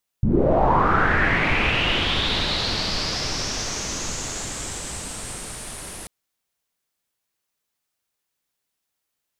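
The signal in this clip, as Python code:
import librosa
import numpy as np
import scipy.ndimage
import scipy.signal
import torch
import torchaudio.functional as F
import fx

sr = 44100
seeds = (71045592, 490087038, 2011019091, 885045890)

y = fx.riser_noise(sr, seeds[0], length_s=5.84, colour='pink', kind='lowpass', start_hz=130.0, end_hz=10000.0, q=4.8, swell_db=-20.5, law='linear')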